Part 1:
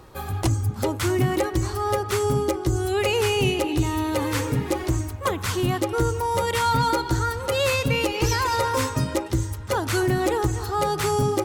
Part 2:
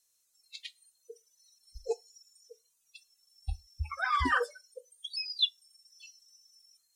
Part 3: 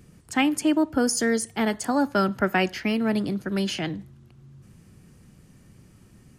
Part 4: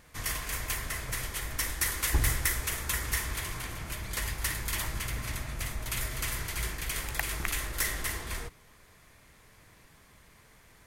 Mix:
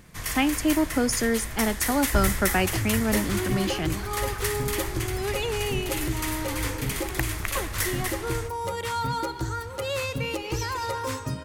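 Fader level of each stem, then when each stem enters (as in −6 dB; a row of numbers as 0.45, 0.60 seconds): −7.0, −13.5, −1.5, +2.0 decibels; 2.30, 0.00, 0.00, 0.00 seconds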